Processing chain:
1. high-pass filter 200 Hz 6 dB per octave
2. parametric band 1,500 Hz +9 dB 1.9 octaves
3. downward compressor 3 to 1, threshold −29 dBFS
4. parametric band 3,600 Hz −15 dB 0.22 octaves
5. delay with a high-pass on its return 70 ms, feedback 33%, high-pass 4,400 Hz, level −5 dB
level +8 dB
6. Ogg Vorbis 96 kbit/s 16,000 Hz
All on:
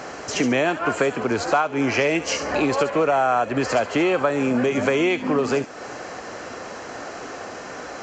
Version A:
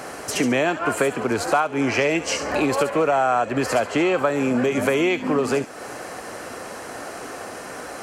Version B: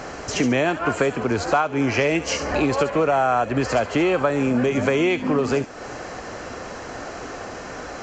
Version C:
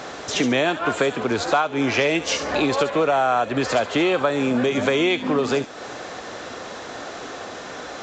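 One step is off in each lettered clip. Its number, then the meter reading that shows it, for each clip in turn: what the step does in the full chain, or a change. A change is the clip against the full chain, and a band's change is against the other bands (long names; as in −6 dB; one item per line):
6, 8 kHz band +2.0 dB
1, 125 Hz band +4.5 dB
4, 4 kHz band +4.5 dB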